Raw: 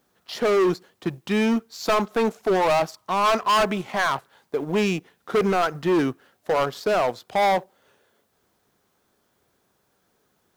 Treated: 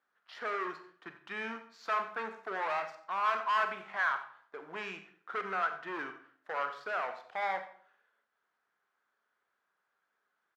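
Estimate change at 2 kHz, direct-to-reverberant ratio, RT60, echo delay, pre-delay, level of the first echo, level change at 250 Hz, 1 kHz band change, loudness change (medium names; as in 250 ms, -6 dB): -6.0 dB, 7.5 dB, 0.55 s, 90 ms, 28 ms, -16.5 dB, -25.0 dB, -10.0 dB, -12.0 dB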